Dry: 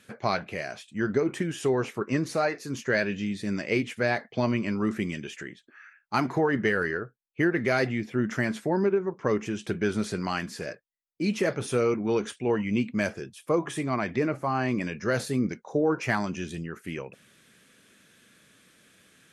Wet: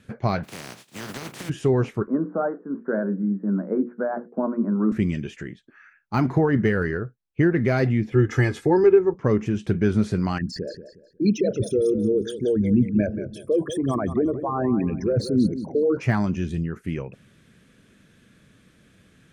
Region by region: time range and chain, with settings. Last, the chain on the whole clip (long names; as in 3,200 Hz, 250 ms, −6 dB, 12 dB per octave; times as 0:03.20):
0:00.43–0:01.48: compressing power law on the bin magnitudes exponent 0.19 + high-pass filter 130 Hz 24 dB per octave + downward compressor, threshold −31 dBFS
0:02.07–0:04.92: Chebyshev band-pass filter 180–1,500 Hz, order 5 + mains-hum notches 60/120/180/240/300/360/420/480/540 Hz
0:08.12–0:09.14: high-shelf EQ 2,100 Hz +4 dB + comb filter 2.4 ms, depth 99%
0:10.38–0:15.97: spectral envelope exaggerated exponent 3 + high shelf with overshoot 3,300 Hz +8.5 dB, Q 1.5 + feedback echo with a swinging delay time 181 ms, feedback 31%, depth 67 cents, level −11.5 dB
whole clip: RIAA equalisation playback; de-essing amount 95%; high-shelf EQ 4,700 Hz +8 dB